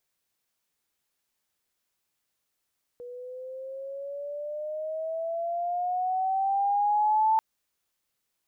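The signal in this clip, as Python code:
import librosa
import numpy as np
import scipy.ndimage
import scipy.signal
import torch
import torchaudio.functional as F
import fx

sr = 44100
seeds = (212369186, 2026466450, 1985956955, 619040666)

y = fx.riser_tone(sr, length_s=4.39, level_db=-19, wave='sine', hz=484.0, rise_st=10.5, swell_db=19)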